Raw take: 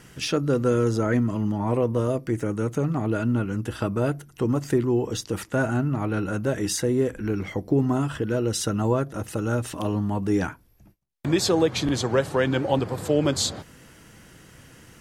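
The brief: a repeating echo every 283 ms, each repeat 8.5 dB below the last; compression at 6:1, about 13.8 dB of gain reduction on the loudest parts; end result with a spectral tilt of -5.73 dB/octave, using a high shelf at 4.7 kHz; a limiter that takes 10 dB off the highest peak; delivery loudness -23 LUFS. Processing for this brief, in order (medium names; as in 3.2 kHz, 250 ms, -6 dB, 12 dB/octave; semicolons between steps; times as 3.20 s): treble shelf 4.7 kHz -8.5 dB; compression 6:1, threshold -32 dBFS; peak limiter -30 dBFS; feedback delay 283 ms, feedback 38%, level -8.5 dB; trim +15.5 dB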